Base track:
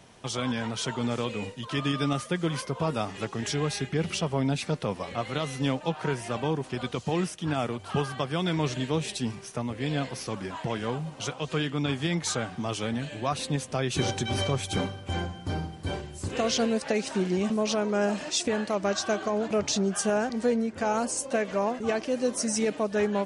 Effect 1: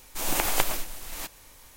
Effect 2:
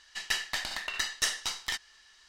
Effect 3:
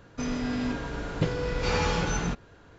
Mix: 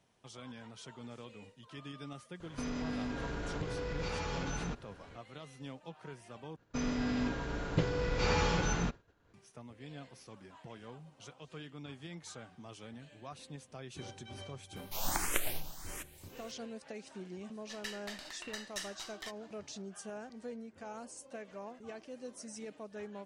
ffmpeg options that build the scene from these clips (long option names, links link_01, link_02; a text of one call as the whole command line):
ffmpeg -i bed.wav -i cue0.wav -i cue1.wav -i cue2.wav -filter_complex "[3:a]asplit=2[link_01][link_02];[0:a]volume=-19dB[link_03];[link_01]acompressor=threshold=-32dB:ratio=6:attack=3.2:release=140:knee=1:detection=peak[link_04];[link_02]agate=range=-33dB:threshold=-45dB:ratio=3:release=100:detection=peak[link_05];[1:a]asplit=2[link_06][link_07];[link_07]afreqshift=1.5[link_08];[link_06][link_08]amix=inputs=2:normalize=1[link_09];[link_03]asplit=2[link_10][link_11];[link_10]atrim=end=6.564[link_12];[link_05]atrim=end=2.78,asetpts=PTS-STARTPTS,volume=-4dB[link_13];[link_11]atrim=start=9.336[link_14];[link_04]atrim=end=2.78,asetpts=PTS-STARTPTS,volume=-2dB,afade=type=in:duration=0.004:curve=hsin,afade=type=out:start_time=2.776:duration=0.004:curve=hsin,adelay=2400[link_15];[link_09]atrim=end=1.76,asetpts=PTS-STARTPTS,volume=-5dB,afade=type=in:duration=0.004:curve=hsin,afade=type=out:start_time=1.756:duration=0.004:curve=hsin,adelay=650916S[link_16];[2:a]atrim=end=2.28,asetpts=PTS-STARTPTS,volume=-13dB,afade=type=in:duration=0.004:curve=hsin,afade=type=out:start_time=2.276:duration=0.004:curve=hsin,adelay=17540[link_17];[link_12][link_13]acrossfade=duration=0.004:curve1=hsin:curve2=hsin[link_18];[link_18][link_14]acrossfade=duration=0.004:curve1=hsin:curve2=hsin[link_19];[link_19][link_15][link_16][link_17]amix=inputs=4:normalize=0" out.wav